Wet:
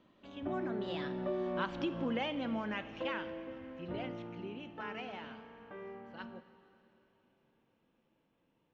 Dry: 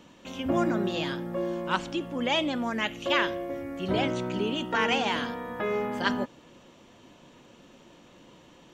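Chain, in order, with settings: Doppler pass-by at 1.84 s, 22 m/s, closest 5.8 m; compression 5:1, threshold -37 dBFS, peak gain reduction 13.5 dB; distance through air 220 m; plate-style reverb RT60 3.2 s, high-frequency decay 1×, DRR 12 dB; trim +5 dB

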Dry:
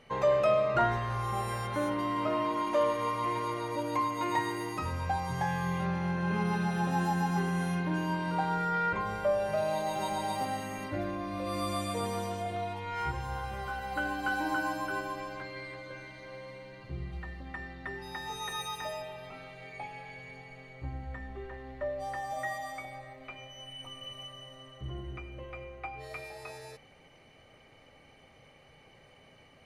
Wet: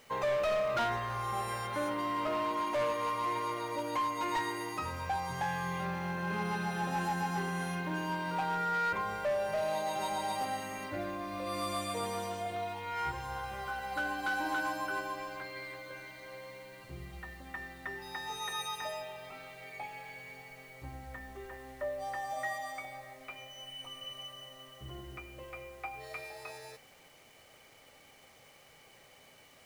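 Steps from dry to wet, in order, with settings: bit crusher 10-bit; bass shelf 320 Hz -8.5 dB; hard clipper -28 dBFS, distortion -14 dB

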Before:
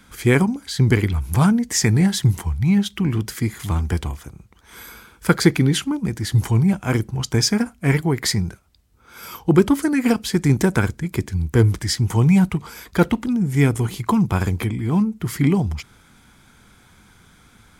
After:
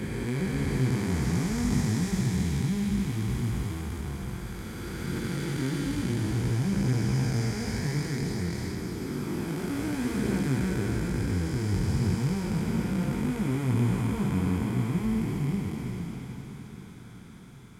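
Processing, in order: spectral blur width 1200 ms; chorus voices 2, 0.29 Hz, delay 19 ms, depth 4.1 ms; echo that smears into a reverb 1086 ms, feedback 44%, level -15 dB

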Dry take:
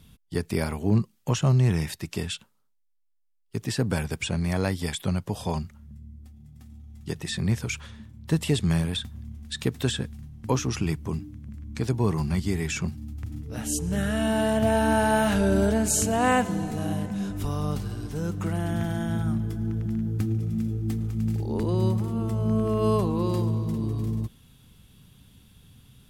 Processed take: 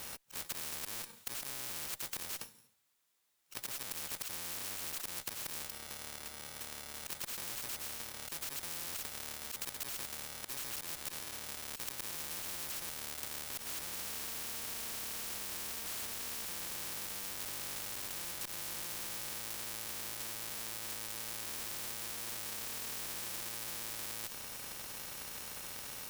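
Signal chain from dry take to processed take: bit-reversed sample order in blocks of 64 samples; bass shelf 290 Hz -6 dB; slow attack 214 ms; valve stage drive 35 dB, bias 0.55; spectrum-flattening compressor 10:1; trim +8 dB

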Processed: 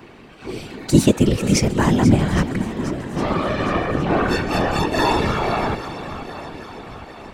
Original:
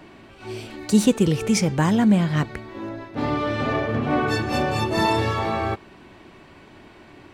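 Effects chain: shuffle delay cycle 811 ms, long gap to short 1.5:1, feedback 49%, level -12.5 dB; whisper effect; trim +2.5 dB

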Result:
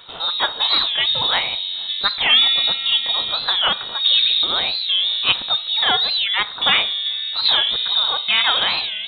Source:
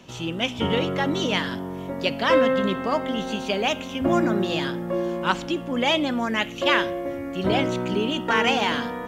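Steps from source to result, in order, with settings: elliptic high-pass 160 Hz; band-stop 1.3 kHz, Q 26; in parallel at -2 dB: gain riding within 3 dB 0.5 s; on the sum: frequency inversion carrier 4 kHz; warped record 45 rpm, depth 160 cents

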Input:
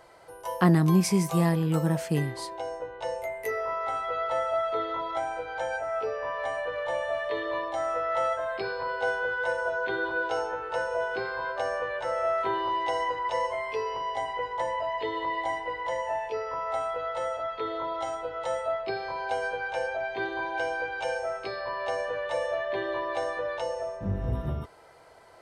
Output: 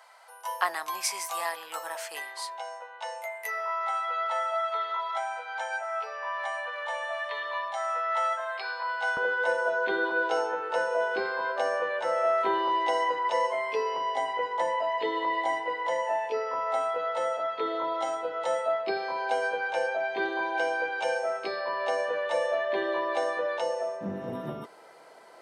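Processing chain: high-pass 770 Hz 24 dB/octave, from 9.17 s 190 Hz; trim +2 dB

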